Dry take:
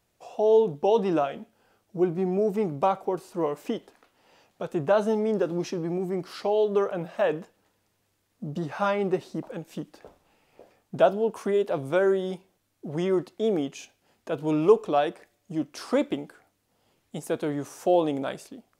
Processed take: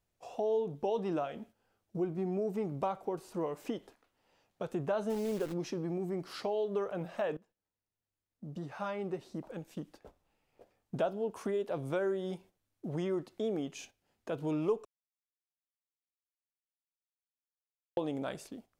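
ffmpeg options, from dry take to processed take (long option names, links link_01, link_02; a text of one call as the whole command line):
ffmpeg -i in.wav -filter_complex "[0:a]asplit=3[link_01][link_02][link_03];[link_01]afade=type=out:start_time=5.09:duration=0.02[link_04];[link_02]acrusher=bits=7:dc=4:mix=0:aa=0.000001,afade=type=in:start_time=5.09:duration=0.02,afade=type=out:start_time=5.52:duration=0.02[link_05];[link_03]afade=type=in:start_time=5.52:duration=0.02[link_06];[link_04][link_05][link_06]amix=inputs=3:normalize=0,asplit=4[link_07][link_08][link_09][link_10];[link_07]atrim=end=7.37,asetpts=PTS-STARTPTS,afade=type=out:start_time=7.366:duration=0.004:curve=hsin:silence=0.105925[link_11];[link_08]atrim=start=7.37:end=14.85,asetpts=PTS-STARTPTS,afade=type=in:duration=3.6:silence=0.105925,afade=type=out:start_time=7.476:duration=0.004:curve=hsin[link_12];[link_09]atrim=start=14.85:end=17.97,asetpts=PTS-STARTPTS,volume=0[link_13];[link_10]atrim=start=17.97,asetpts=PTS-STARTPTS,afade=type=in:duration=0.004:curve=hsin[link_14];[link_11][link_12][link_13][link_14]concat=n=4:v=0:a=1,lowshelf=frequency=80:gain=10.5,agate=range=-9dB:threshold=-49dB:ratio=16:detection=peak,acompressor=threshold=-32dB:ratio=2,volume=-3.5dB" out.wav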